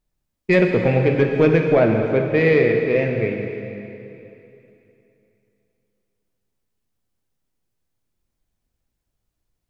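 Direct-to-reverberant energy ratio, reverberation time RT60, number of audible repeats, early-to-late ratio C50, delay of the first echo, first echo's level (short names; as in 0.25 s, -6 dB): 2.5 dB, 3.0 s, none, 4.0 dB, none, none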